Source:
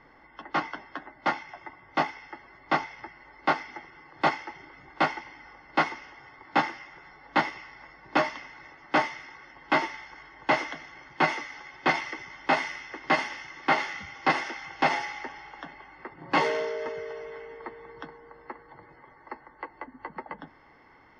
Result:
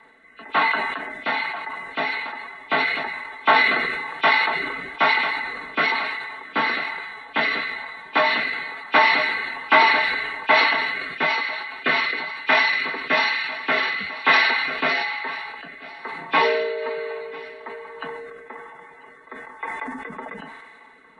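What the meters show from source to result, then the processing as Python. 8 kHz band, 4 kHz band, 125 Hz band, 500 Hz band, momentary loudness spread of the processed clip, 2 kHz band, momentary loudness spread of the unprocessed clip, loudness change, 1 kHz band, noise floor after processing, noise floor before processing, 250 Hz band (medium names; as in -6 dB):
no reading, +12.5 dB, -2.0 dB, +5.5 dB, 18 LU, +11.5 dB, 19 LU, +8.0 dB, +6.0 dB, -47 dBFS, -56 dBFS, +0.5 dB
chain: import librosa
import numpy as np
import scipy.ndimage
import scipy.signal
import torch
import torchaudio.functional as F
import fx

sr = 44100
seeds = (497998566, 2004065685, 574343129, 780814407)

p1 = fx.freq_compress(x, sr, knee_hz=2200.0, ratio=1.5)
p2 = fx.riaa(p1, sr, side='recording')
p3 = p2 + 0.73 * np.pad(p2, (int(4.5 * sr / 1000.0), 0))[:len(p2)]
p4 = p3 + fx.echo_single(p3, sr, ms=995, db=-19.0, dry=0)
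p5 = fx.rotary(p4, sr, hz=1.1)
p6 = fx.sustainer(p5, sr, db_per_s=32.0)
y = p6 * librosa.db_to_amplitude(5.5)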